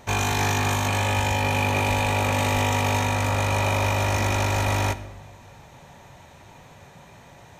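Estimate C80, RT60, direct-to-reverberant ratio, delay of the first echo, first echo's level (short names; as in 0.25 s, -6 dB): 16.5 dB, 1.2 s, 12.0 dB, none, none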